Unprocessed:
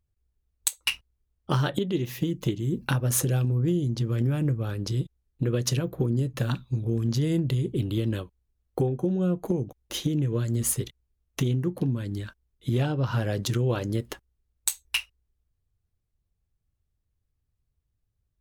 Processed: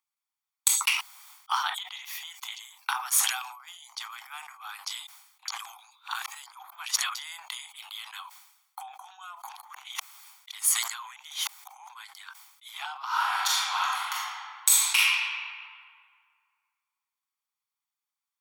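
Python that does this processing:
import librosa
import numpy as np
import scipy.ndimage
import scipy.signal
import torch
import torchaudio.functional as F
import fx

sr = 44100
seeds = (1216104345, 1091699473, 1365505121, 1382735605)

y = fx.reverb_throw(x, sr, start_s=13.05, length_s=1.92, rt60_s=2.1, drr_db=-9.0)
y = fx.edit(y, sr, fx.reverse_span(start_s=5.48, length_s=1.67),
    fx.reverse_span(start_s=9.49, length_s=2.4), tone=tone)
y = scipy.signal.sosfilt(scipy.signal.butter(16, 770.0, 'highpass', fs=sr, output='sos'), y)
y = y + 0.46 * np.pad(y, (int(0.9 * sr / 1000.0), 0))[:len(y)]
y = fx.sustainer(y, sr, db_per_s=68.0)
y = y * librosa.db_to_amplitude(1.5)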